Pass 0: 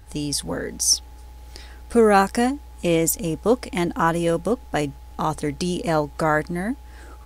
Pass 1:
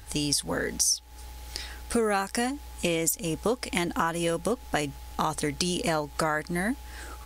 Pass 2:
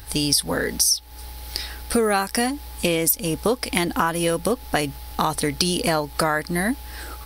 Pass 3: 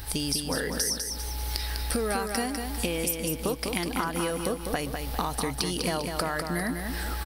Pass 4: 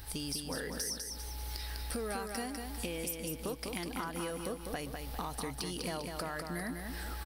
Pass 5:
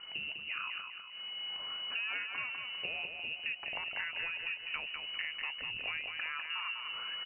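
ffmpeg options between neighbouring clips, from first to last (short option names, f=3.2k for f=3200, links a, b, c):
-af "tiltshelf=f=1.2k:g=-4.5,acompressor=threshold=-26dB:ratio=8,volume=3dB"
-af "aexciter=amount=1.2:drive=4.1:freq=3.9k,volume=5.5dB"
-filter_complex "[0:a]acompressor=threshold=-32dB:ratio=3,asplit=2[a][b];[b]aecho=0:1:200|400|600|800|1000:0.531|0.228|0.0982|0.0422|0.0181[c];[a][c]amix=inputs=2:normalize=0,volume=2dB"
-af "asoftclip=type=tanh:threshold=-18dB,volume=-8.5dB"
-af "lowpass=f=2.6k:t=q:w=0.5098,lowpass=f=2.6k:t=q:w=0.6013,lowpass=f=2.6k:t=q:w=0.9,lowpass=f=2.6k:t=q:w=2.563,afreqshift=-3000"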